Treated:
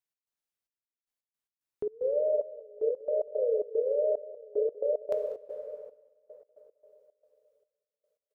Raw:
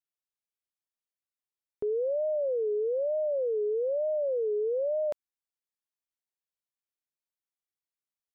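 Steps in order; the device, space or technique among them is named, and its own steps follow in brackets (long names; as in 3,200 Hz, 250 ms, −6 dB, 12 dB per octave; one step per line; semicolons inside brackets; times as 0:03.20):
0:03.05–0:03.55: notch filter 560 Hz, Q 12
dense smooth reverb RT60 3.9 s, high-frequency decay 0.6×, DRR 3.5 dB
trance gate with a delay (gate pattern "x.xxx...x.x.x" 112 BPM −24 dB; repeating echo 193 ms, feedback 39%, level −19 dB)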